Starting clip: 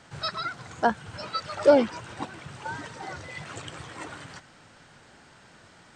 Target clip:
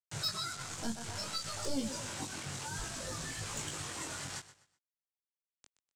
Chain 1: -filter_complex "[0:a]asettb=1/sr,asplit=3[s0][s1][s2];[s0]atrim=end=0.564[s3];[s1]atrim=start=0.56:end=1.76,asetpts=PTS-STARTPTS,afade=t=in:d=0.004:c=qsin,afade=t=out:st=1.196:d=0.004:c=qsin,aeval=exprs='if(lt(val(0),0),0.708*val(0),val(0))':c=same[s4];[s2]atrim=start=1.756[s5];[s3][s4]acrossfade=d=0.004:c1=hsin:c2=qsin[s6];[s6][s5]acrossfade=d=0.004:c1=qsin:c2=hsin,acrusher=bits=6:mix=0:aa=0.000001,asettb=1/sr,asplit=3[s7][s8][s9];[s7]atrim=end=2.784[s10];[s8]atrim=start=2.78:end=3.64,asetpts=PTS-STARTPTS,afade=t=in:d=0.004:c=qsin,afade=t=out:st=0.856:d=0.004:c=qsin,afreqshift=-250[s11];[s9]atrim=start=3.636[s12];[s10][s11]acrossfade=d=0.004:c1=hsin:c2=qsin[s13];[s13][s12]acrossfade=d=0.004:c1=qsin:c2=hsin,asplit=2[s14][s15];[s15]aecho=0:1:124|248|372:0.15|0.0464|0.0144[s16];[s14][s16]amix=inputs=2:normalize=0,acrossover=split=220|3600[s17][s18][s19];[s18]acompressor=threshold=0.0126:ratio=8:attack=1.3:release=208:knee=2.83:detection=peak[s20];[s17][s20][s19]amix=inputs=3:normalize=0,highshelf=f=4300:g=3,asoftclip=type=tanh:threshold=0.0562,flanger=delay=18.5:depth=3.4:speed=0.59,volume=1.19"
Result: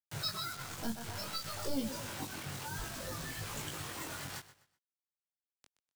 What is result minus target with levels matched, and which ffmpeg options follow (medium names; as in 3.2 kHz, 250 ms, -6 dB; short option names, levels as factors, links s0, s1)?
8 kHz band -3.5 dB
-filter_complex "[0:a]asettb=1/sr,asplit=3[s0][s1][s2];[s0]atrim=end=0.564[s3];[s1]atrim=start=0.56:end=1.76,asetpts=PTS-STARTPTS,afade=t=in:d=0.004:c=qsin,afade=t=out:st=1.196:d=0.004:c=qsin,aeval=exprs='if(lt(val(0),0),0.708*val(0),val(0))':c=same[s4];[s2]atrim=start=1.756[s5];[s3][s4]acrossfade=d=0.004:c1=hsin:c2=qsin[s6];[s6][s5]acrossfade=d=0.004:c1=qsin:c2=hsin,acrusher=bits=6:mix=0:aa=0.000001,asettb=1/sr,asplit=3[s7][s8][s9];[s7]atrim=end=2.784[s10];[s8]atrim=start=2.78:end=3.64,asetpts=PTS-STARTPTS,afade=t=in:d=0.004:c=qsin,afade=t=out:st=0.856:d=0.004:c=qsin,afreqshift=-250[s11];[s9]atrim=start=3.636[s12];[s10][s11]acrossfade=d=0.004:c1=hsin:c2=qsin[s13];[s13][s12]acrossfade=d=0.004:c1=qsin:c2=hsin,asplit=2[s14][s15];[s15]aecho=0:1:124|248|372:0.15|0.0464|0.0144[s16];[s14][s16]amix=inputs=2:normalize=0,acrossover=split=220|3600[s17][s18][s19];[s18]acompressor=threshold=0.0126:ratio=8:attack=1.3:release=208:knee=2.83:detection=peak[s20];[s17][s20][s19]amix=inputs=3:normalize=0,lowpass=f=7700:t=q:w=2.1,highshelf=f=4300:g=3,asoftclip=type=tanh:threshold=0.0562,flanger=delay=18.5:depth=3.4:speed=0.59,volume=1.19"